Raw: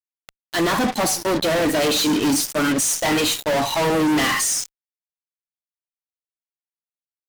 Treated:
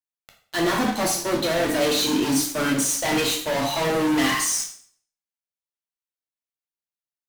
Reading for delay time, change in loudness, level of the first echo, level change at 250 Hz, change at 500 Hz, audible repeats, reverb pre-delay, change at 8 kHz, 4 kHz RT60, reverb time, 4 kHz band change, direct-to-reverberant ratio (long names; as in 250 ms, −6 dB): no echo audible, −2.5 dB, no echo audible, −2.5 dB, −2.5 dB, no echo audible, 4 ms, −2.5 dB, 0.50 s, 0.55 s, −2.5 dB, 1.5 dB